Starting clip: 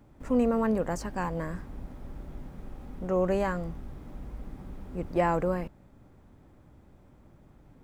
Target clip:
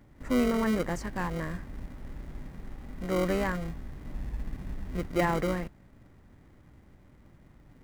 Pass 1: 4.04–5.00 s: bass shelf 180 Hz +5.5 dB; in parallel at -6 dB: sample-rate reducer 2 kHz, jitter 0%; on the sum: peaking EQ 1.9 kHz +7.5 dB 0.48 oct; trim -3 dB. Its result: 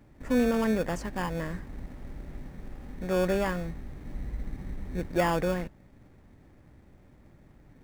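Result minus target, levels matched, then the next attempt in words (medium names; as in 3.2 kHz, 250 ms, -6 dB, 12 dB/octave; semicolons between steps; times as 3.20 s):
sample-rate reducer: distortion -9 dB
4.04–5.00 s: bass shelf 180 Hz +5.5 dB; in parallel at -6 dB: sample-rate reducer 870 Hz, jitter 0%; on the sum: peaking EQ 1.9 kHz +7.5 dB 0.48 oct; trim -3 dB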